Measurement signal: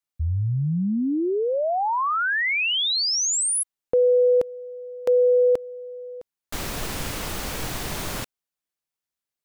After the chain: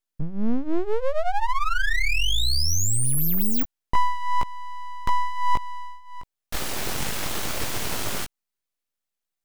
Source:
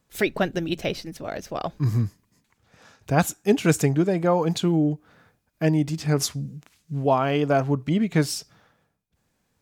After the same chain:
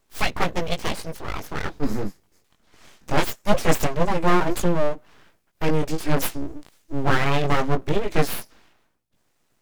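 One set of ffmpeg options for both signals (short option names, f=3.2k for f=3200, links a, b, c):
-filter_complex "[0:a]asplit=2[a][b];[b]asoftclip=type=tanh:threshold=-19dB,volume=-6.5dB[c];[a][c]amix=inputs=2:normalize=0,flanger=delay=16.5:depth=4.9:speed=0.21,aeval=exprs='abs(val(0))':c=same,volume=4dB"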